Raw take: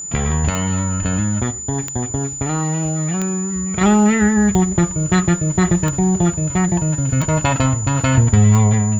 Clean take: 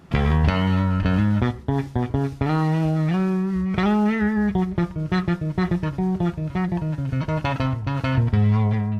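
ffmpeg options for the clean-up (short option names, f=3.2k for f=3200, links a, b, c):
-af "adeclick=t=4,bandreject=f=7k:w=30,asetnsamples=n=441:p=0,asendcmd='3.81 volume volume -6.5dB',volume=0dB"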